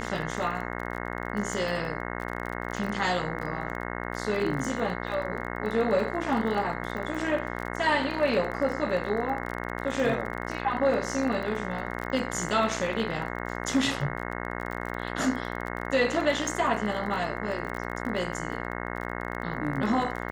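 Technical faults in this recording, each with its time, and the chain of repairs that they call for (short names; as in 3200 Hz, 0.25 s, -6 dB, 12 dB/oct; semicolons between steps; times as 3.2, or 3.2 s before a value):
buzz 60 Hz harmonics 36 -34 dBFS
crackle 30/s -33 dBFS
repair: de-click; de-hum 60 Hz, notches 36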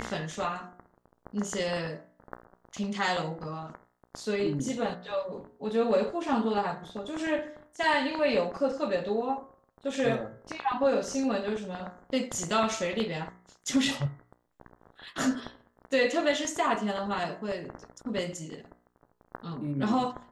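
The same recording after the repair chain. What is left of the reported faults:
none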